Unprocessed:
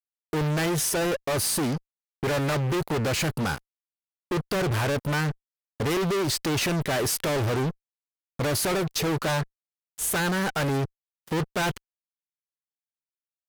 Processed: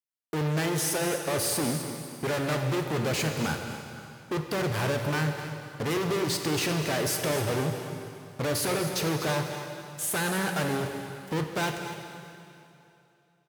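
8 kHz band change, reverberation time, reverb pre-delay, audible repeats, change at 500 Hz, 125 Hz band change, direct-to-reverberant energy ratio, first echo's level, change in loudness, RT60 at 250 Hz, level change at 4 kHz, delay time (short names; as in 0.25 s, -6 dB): -2.0 dB, 2.8 s, 7 ms, 1, -2.0 dB, -2.5 dB, 3.5 dB, -12.0 dB, -2.5 dB, 2.8 s, -2.0 dB, 0.247 s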